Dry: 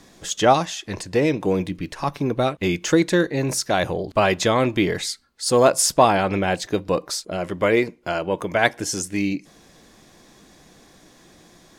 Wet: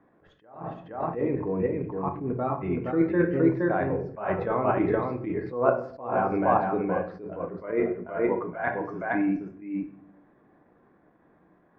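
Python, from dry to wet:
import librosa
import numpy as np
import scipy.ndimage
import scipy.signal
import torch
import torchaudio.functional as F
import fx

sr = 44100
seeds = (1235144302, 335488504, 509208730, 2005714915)

y = fx.highpass(x, sr, hz=130.0, slope=6)
y = fx.noise_reduce_blind(y, sr, reduce_db=8)
y = scipy.signal.sosfilt(scipy.signal.butter(4, 1600.0, 'lowpass', fs=sr, output='sos'), y)
y = fx.hum_notches(y, sr, base_hz=50, count=4)
y = fx.level_steps(y, sr, step_db=9)
y = y + 10.0 ** (-3.5 / 20.0) * np.pad(y, (int(468 * sr / 1000.0), 0))[:len(y)]
y = fx.room_shoebox(y, sr, seeds[0], volume_m3=74.0, walls='mixed', distance_m=0.42)
y = fx.attack_slew(y, sr, db_per_s=110.0)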